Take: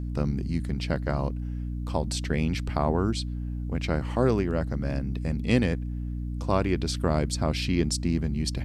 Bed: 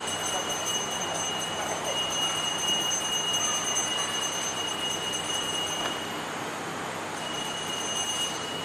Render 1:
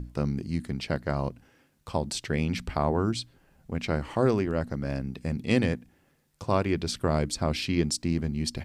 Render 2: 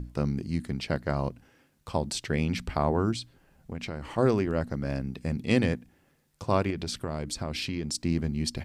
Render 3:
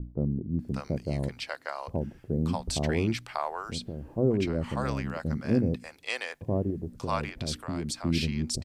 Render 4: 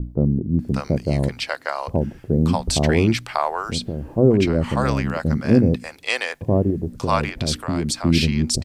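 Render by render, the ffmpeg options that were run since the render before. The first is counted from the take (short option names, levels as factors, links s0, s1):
-af "bandreject=f=60:t=h:w=6,bandreject=f=120:t=h:w=6,bandreject=f=180:t=h:w=6,bandreject=f=240:t=h:w=6,bandreject=f=300:t=h:w=6"
-filter_complex "[0:a]asettb=1/sr,asplit=3[s0][s1][s2];[s0]atrim=end=3.144[s3];[s1]atrim=start=3.14:end=4.18,asetpts=PTS-STARTPTS,afade=t=in:d=0.004:c=qsin,afade=t=out:st=1.036:d=0.004:c=qsin,acompressor=threshold=0.0282:ratio=6:attack=3.2:release=140:knee=1:detection=peak[s4];[s2]atrim=start=4.176[s5];[s3][s4]acrossfade=d=0.004:c1=hsin:c2=qsin[s6];[s6][s5]acrossfade=d=0.004:c1=qsin:c2=hsin,asettb=1/sr,asplit=3[s7][s8][s9];[s7]atrim=end=6.704[s10];[s8]atrim=start=6.7:end=7.95,asetpts=PTS-STARTPTS,afade=t=in:d=0.004:c=qsin,afade=t=out:st=1.246:d=0.004:c=qsin,acompressor=threshold=0.0398:ratio=5:attack=3.2:release=140:knee=1:detection=peak[s11];[s9]atrim=start=7.946[s12];[s10][s11]acrossfade=d=0.004:c1=hsin:c2=qsin[s13];[s13][s12]acrossfade=d=0.004:c1=qsin:c2=hsin"
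-filter_complex "[0:a]acrossover=split=630[s0][s1];[s1]adelay=590[s2];[s0][s2]amix=inputs=2:normalize=0"
-af "volume=3.16"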